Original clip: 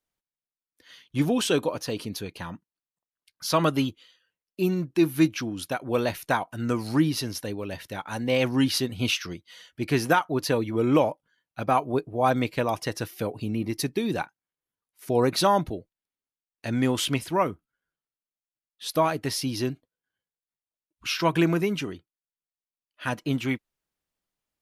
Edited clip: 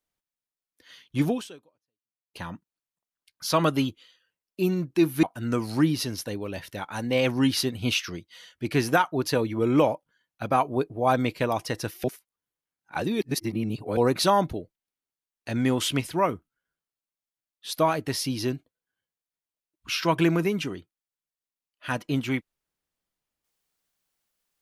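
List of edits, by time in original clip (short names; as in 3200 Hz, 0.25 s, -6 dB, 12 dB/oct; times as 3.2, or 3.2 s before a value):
1.3–2.34 fade out exponential
5.23–6.4 cut
13.21–15.14 reverse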